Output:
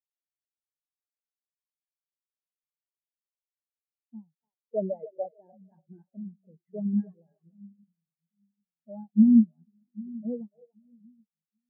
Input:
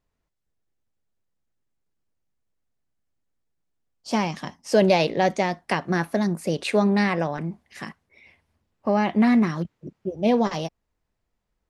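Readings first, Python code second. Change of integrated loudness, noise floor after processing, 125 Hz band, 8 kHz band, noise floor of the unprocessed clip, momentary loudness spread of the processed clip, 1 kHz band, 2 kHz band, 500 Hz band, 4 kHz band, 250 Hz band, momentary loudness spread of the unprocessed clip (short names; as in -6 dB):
-3.0 dB, under -85 dBFS, -10.5 dB, under -35 dB, -79 dBFS, 24 LU, -25.5 dB, under -40 dB, -14.5 dB, under -40 dB, -3.0 dB, 16 LU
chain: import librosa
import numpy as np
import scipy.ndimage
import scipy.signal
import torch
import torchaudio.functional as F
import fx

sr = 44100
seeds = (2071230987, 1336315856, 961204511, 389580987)

y = fx.freq_compress(x, sr, knee_hz=1300.0, ratio=1.5)
y = fx.echo_split(y, sr, split_hz=300.0, low_ms=785, high_ms=291, feedback_pct=52, wet_db=-5.0)
y = fx.spectral_expand(y, sr, expansion=4.0)
y = y * librosa.db_to_amplitude(-3.5)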